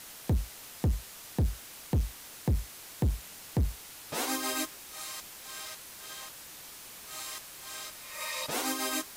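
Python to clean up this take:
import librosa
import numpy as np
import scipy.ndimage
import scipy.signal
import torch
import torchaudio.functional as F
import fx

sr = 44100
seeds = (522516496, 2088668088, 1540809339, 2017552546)

y = fx.fix_declip(x, sr, threshold_db=-23.0)
y = fx.fix_declick_ar(y, sr, threshold=6.5)
y = fx.noise_reduce(y, sr, print_start_s=6.31, print_end_s=6.81, reduce_db=28.0)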